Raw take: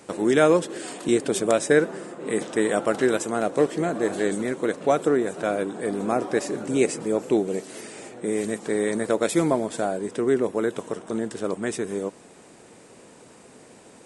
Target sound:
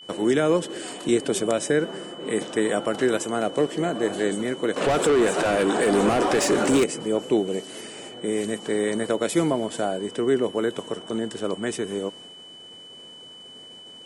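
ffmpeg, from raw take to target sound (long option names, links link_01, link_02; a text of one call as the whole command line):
ffmpeg -i in.wav -filter_complex "[0:a]asettb=1/sr,asplit=3[link_01][link_02][link_03];[link_01]atrim=end=4.764[link_04];[link_02]atrim=start=4.76:end=6.84,asetpts=PTS-STARTPTS,afade=type=in:duration=0.004:curve=qsin,afade=type=out:start_time=2.076:duration=0.004:curve=qsin,asplit=2[link_05][link_06];[link_06]highpass=frequency=720:poles=1,volume=25dB,asoftclip=type=tanh:threshold=-7dB[link_07];[link_05][link_07]amix=inputs=2:normalize=0,lowpass=frequency=6900:poles=1,volume=-6dB[link_08];[link_03]atrim=start=6.836[link_09];[link_04][link_08]acrossfade=duration=0.004:curve1=hsin:curve2=qsin[link_10];[link_10][link_09]acrossfade=duration=0.004:curve1=qsin:curve2=hsin,acrossover=split=300[link_11][link_12];[link_12]alimiter=limit=-14dB:level=0:latency=1:release=105[link_13];[link_11][link_13]amix=inputs=2:normalize=0,agate=range=-33dB:threshold=-45dB:ratio=3:detection=peak,aeval=exprs='val(0)+0.00794*sin(2*PI*3000*n/s)':channel_layout=same" out.wav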